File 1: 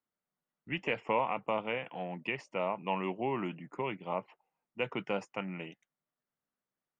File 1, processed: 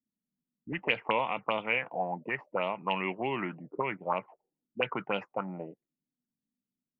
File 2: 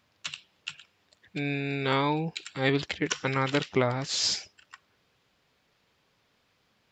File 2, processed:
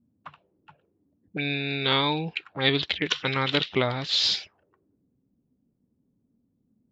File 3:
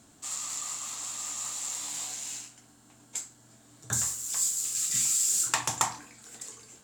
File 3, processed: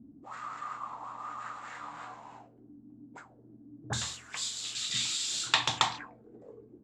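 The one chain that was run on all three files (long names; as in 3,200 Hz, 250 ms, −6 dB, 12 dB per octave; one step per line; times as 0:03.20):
envelope-controlled low-pass 240–3,700 Hz up, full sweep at −28 dBFS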